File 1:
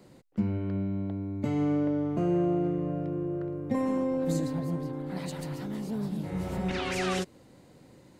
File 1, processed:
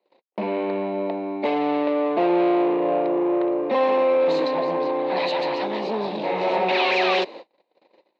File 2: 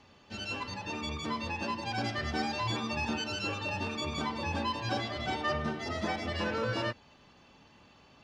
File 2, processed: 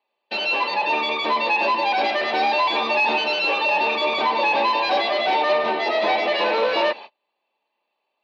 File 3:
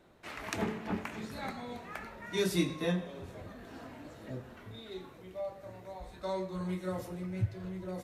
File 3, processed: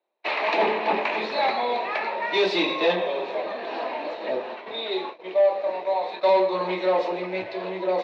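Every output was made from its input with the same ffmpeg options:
-filter_complex "[0:a]agate=range=0.0141:threshold=0.00316:ratio=16:detection=peak,asplit=2[s0][s1];[s1]highpass=f=720:p=1,volume=17.8,asoftclip=type=tanh:threshold=0.158[s2];[s0][s2]amix=inputs=2:normalize=0,lowpass=f=1000:p=1,volume=0.501,highpass=f=270:w=0.5412,highpass=f=270:w=1.3066,equalizer=f=270:t=q:w=4:g=-9,equalizer=f=610:t=q:w=4:g=4,equalizer=f=910:t=q:w=4:g=5,equalizer=f=1400:t=q:w=4:g=-9,equalizer=f=2500:t=q:w=4:g=8,equalizer=f=4000:t=q:w=4:g=10,lowpass=f=4900:w=0.5412,lowpass=f=4900:w=1.3066,volume=1.88"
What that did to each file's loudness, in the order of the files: +8.5 LU, +13.5 LU, +13.0 LU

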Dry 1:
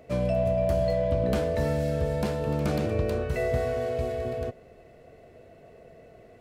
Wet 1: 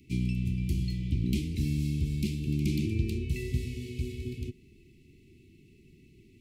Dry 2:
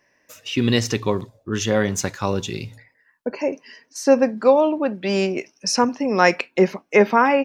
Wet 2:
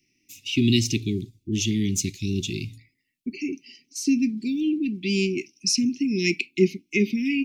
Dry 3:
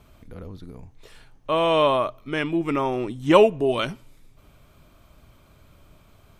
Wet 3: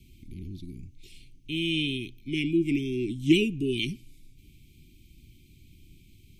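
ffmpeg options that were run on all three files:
-af "asuperstop=centerf=910:order=20:qfactor=0.5"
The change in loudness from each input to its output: -4.5 LU, -4.5 LU, -6.0 LU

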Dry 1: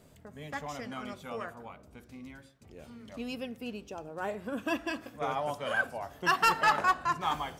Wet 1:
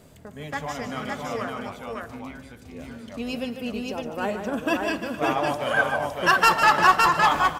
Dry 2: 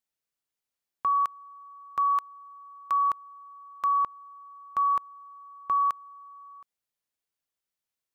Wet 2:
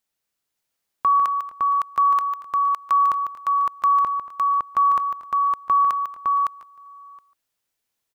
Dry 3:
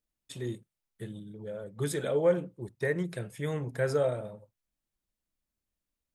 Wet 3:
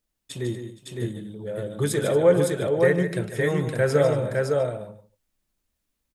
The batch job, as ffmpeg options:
-af "aecho=1:1:149|233|466|560|704:0.376|0.126|0.1|0.708|0.1,volume=2.24"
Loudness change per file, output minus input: +9.0 LU, +6.5 LU, +8.5 LU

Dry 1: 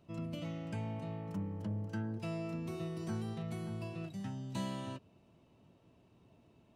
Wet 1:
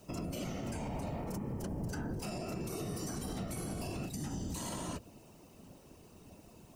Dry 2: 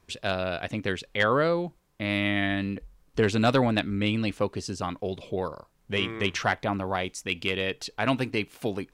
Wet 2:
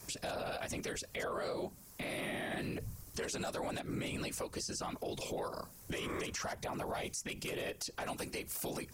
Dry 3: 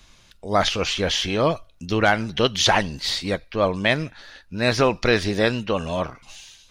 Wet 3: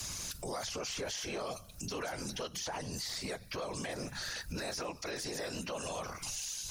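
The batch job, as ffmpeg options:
-filter_complex "[0:a]bandreject=f=50:t=h:w=6,bandreject=f=100:t=h:w=6,bandreject=f=150:t=h:w=6,acrossover=split=450|960|2000|5300[s0][s1][s2][s3][s4];[s0]acompressor=threshold=0.0112:ratio=4[s5];[s1]acompressor=threshold=0.0316:ratio=4[s6];[s2]acompressor=threshold=0.00891:ratio=4[s7];[s3]acompressor=threshold=0.00891:ratio=4[s8];[s4]acompressor=threshold=0.00398:ratio=4[s9];[s5][s6][s7][s8][s9]amix=inputs=5:normalize=0,afftfilt=real='hypot(re,im)*cos(2*PI*random(0))':imag='hypot(re,im)*sin(2*PI*random(1))':win_size=512:overlap=0.75,acrossover=split=450[s10][s11];[s10]asoftclip=type=tanh:threshold=0.0158[s12];[s12][s11]amix=inputs=2:normalize=0,aexciter=amount=4.3:drive=5.9:freq=4900,asplit=2[s13][s14];[s14]volume=29.9,asoftclip=hard,volume=0.0335,volume=0.447[s15];[s13][s15]amix=inputs=2:normalize=0,acompressor=threshold=0.00562:ratio=6,alimiter=level_in=7.94:limit=0.0631:level=0:latency=1:release=53,volume=0.126,volume=3.76"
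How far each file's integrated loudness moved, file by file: +1.0 LU, -12.0 LU, -17.0 LU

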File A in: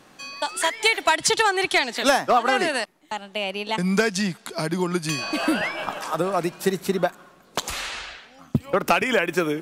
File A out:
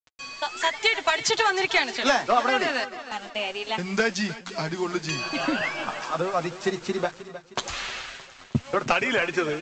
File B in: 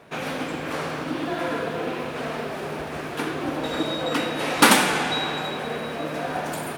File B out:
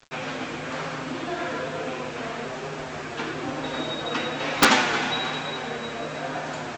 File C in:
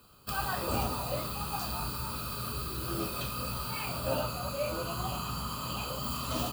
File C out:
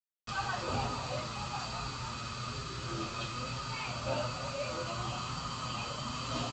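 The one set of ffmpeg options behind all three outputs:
-filter_complex "[0:a]aresample=16000,acrusher=bits=6:mix=0:aa=0.000001,aresample=44100,equalizer=f=300:w=0.36:g=-4.5,asplit=2[s0][s1];[s1]aecho=0:1:311|622|933|1244|1555:0.178|0.0871|0.0427|0.0209|0.0103[s2];[s0][s2]amix=inputs=2:normalize=0,flanger=delay=7.2:depth=1.6:regen=-24:speed=1.1:shape=triangular,highshelf=f=4500:g=-5,aeval=exprs='(mod(2.99*val(0)+1,2)-1)/2.99':c=same,volume=1.58"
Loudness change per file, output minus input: -2.5 LU, -2.0 LU, -3.0 LU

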